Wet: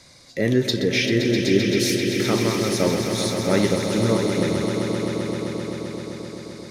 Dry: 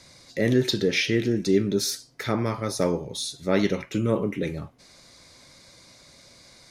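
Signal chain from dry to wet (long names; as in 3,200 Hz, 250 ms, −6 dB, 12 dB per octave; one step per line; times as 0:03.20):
echo that builds up and dies away 130 ms, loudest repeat 5, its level −9 dB
level +1.5 dB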